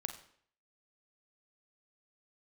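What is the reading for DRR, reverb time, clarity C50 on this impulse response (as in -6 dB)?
5.5 dB, 0.60 s, 10.0 dB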